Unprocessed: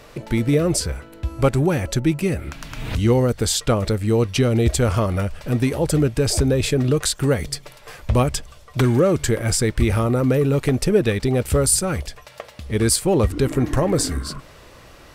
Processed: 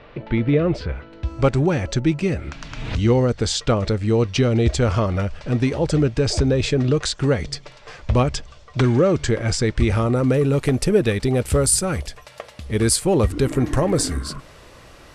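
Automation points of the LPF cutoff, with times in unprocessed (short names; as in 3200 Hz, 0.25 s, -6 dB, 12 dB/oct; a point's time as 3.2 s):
LPF 24 dB/oct
0.9 s 3400 Hz
1.31 s 6700 Hz
9.6 s 6700 Hz
10.69 s 12000 Hz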